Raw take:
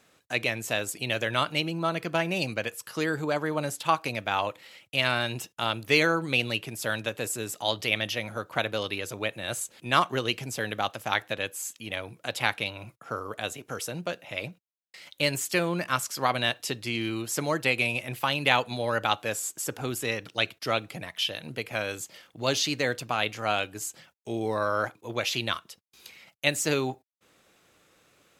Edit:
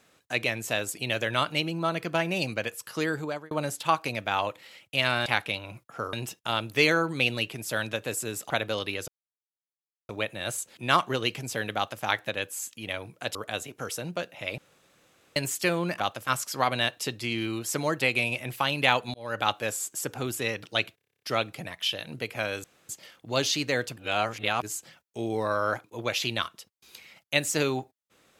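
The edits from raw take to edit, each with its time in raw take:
0:02.98–0:03.51: fade out equal-power
0:07.63–0:08.54: remove
0:09.12: splice in silence 1.01 s
0:10.79–0:11.06: duplicate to 0:15.90
0:12.38–0:13.25: move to 0:05.26
0:14.48–0:15.26: fill with room tone
0:18.77–0:19.09: fade in
0:20.58: stutter 0.03 s, 10 plays
0:22.00: splice in room tone 0.25 s
0:23.08–0:23.74: reverse

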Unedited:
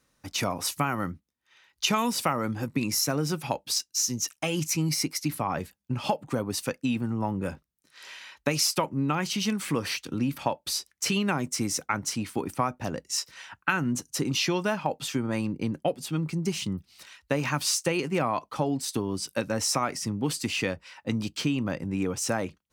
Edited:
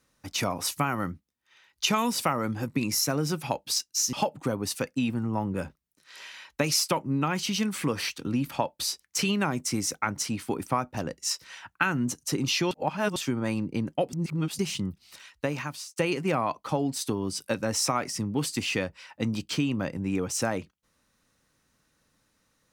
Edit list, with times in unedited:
0:04.13–0:06.00: remove
0:14.58–0:15.03: reverse
0:16.00–0:16.46: reverse
0:17.19–0:17.83: fade out

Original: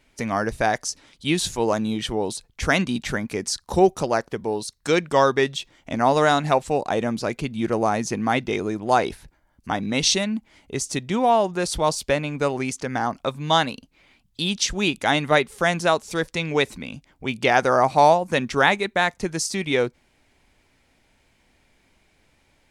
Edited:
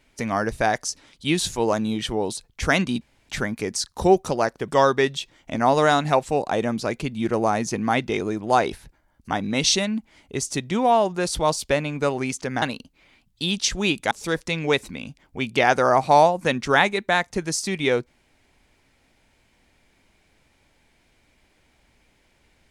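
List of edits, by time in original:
0:03.01: splice in room tone 0.28 s
0:04.40–0:05.07: remove
0:13.01–0:13.60: remove
0:15.09–0:15.98: remove

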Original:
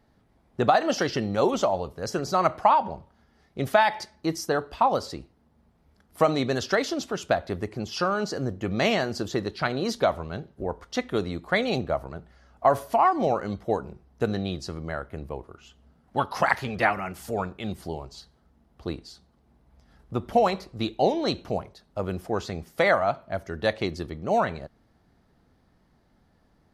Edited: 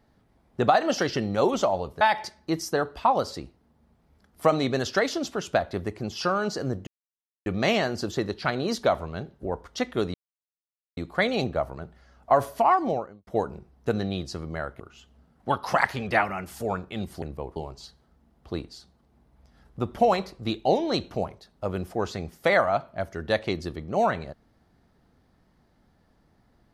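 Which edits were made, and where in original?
0:02.01–0:03.77: remove
0:08.63: splice in silence 0.59 s
0:11.31: splice in silence 0.83 s
0:13.08–0:13.61: fade out and dull
0:15.14–0:15.48: move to 0:17.90

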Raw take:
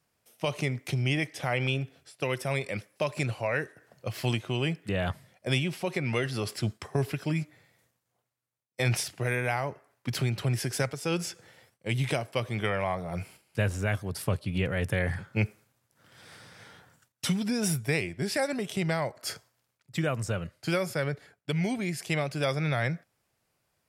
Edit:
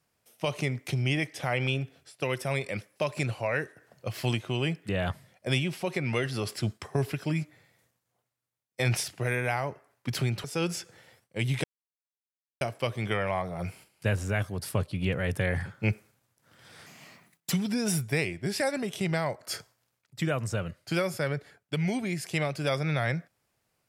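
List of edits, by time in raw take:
0:10.44–0:10.94: remove
0:12.14: splice in silence 0.97 s
0:16.39–0:17.28: play speed 135%

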